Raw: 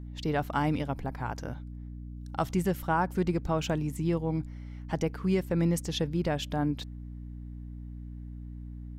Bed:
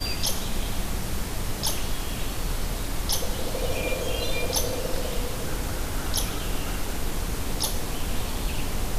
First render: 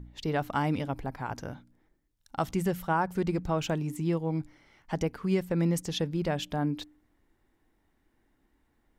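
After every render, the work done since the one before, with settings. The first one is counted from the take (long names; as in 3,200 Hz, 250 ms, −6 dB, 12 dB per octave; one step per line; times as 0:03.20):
hum removal 60 Hz, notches 5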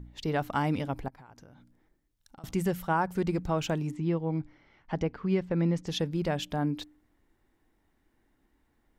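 0:01.08–0:02.44: downward compressor 10 to 1, threshold −48 dBFS
0:03.91–0:05.87: high-frequency loss of the air 160 metres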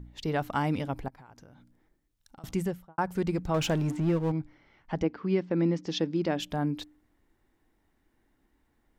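0:02.53–0:02.98: fade out and dull
0:03.54–0:04.32: power curve on the samples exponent 0.7
0:05.03–0:06.40: loudspeaker in its box 120–6,300 Hz, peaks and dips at 130 Hz −8 dB, 310 Hz +8 dB, 5,200 Hz +3 dB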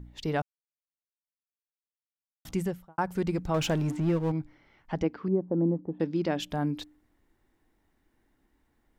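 0:00.42–0:02.45: silence
0:05.28–0:06.00: inverse Chebyshev low-pass filter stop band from 5,200 Hz, stop band 80 dB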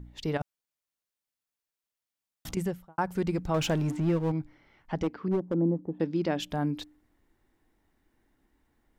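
0:00.37–0:02.57: compressor whose output falls as the input rises −32 dBFS, ratio −0.5
0:05.02–0:05.54: gain into a clipping stage and back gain 22 dB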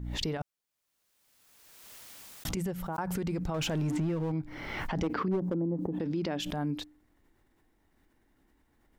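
brickwall limiter −24.5 dBFS, peak gain reduction 8 dB
background raised ahead of every attack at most 29 dB per second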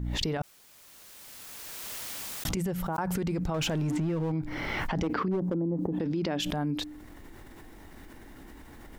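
envelope flattener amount 50%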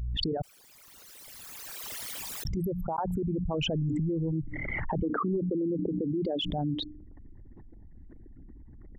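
spectral envelope exaggerated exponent 3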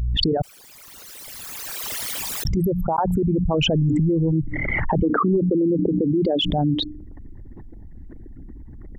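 level +10 dB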